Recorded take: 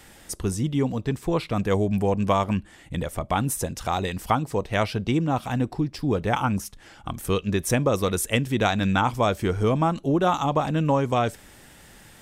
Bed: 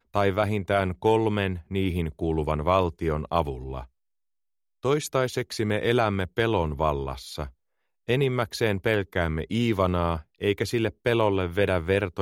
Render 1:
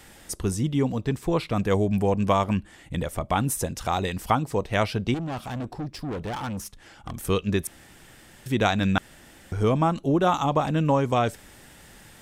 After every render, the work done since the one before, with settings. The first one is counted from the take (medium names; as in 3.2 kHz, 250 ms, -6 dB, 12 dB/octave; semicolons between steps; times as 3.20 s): 5.14–7.14 s: valve stage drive 28 dB, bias 0.35; 7.67–8.46 s: room tone; 8.98–9.52 s: room tone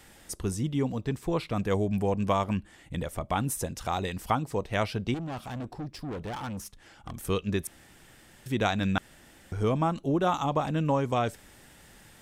trim -4.5 dB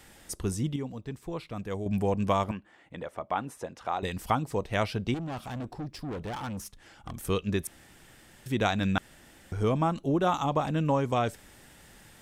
0.76–1.86 s: gain -7.5 dB; 2.51–4.03 s: band-pass filter 890 Hz, Q 0.6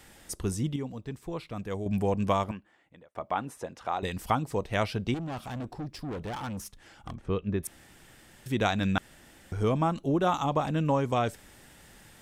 2.32–3.15 s: fade out linear; 7.14–7.63 s: tape spacing loss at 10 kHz 34 dB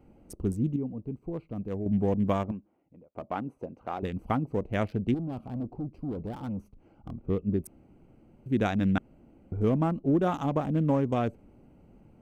local Wiener filter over 25 samples; graphic EQ 250/1000/4000/8000 Hz +5/-5/-8/-6 dB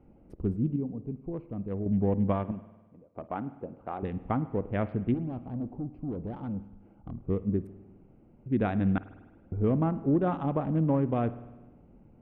distance through air 480 m; spring tank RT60 1.2 s, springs 50 ms, chirp 45 ms, DRR 14.5 dB